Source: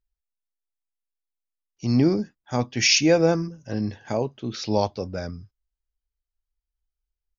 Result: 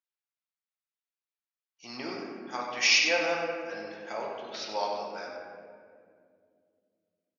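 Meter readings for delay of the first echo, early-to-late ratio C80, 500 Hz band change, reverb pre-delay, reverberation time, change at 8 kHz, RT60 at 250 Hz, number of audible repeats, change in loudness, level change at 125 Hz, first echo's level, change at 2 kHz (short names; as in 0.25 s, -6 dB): 96 ms, 2.0 dB, -9.0 dB, 4 ms, 2.2 s, n/a, 3.3 s, 1, -6.0 dB, -29.0 dB, -8.5 dB, +1.0 dB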